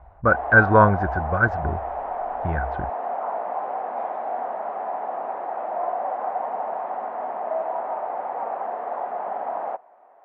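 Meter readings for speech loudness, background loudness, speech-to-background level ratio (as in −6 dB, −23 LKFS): −20.0 LKFS, −29.0 LKFS, 9.0 dB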